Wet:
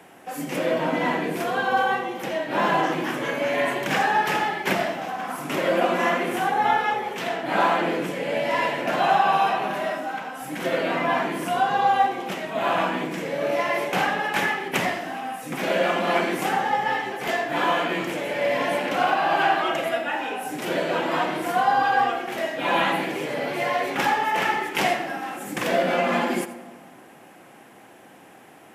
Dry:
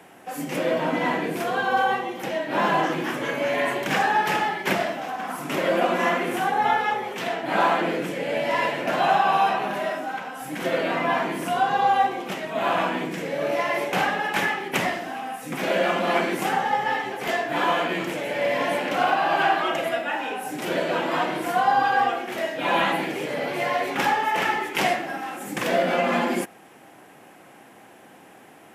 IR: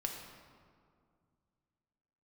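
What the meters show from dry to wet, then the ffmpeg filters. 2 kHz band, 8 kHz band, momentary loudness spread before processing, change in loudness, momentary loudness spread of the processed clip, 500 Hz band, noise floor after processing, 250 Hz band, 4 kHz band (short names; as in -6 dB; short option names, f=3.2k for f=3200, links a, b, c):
0.0 dB, 0.0 dB, 8 LU, 0.0 dB, 8 LU, 0.0 dB, -48 dBFS, 0.0 dB, 0.0 dB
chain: -filter_complex "[0:a]asplit=2[a][b];[1:a]atrim=start_sample=2205,adelay=86[c];[b][c]afir=irnorm=-1:irlink=0,volume=-14dB[d];[a][d]amix=inputs=2:normalize=0"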